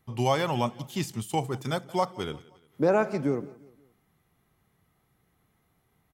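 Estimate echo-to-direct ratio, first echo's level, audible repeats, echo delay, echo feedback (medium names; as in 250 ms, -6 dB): -20.0 dB, -21.0 dB, 2, 175 ms, 44%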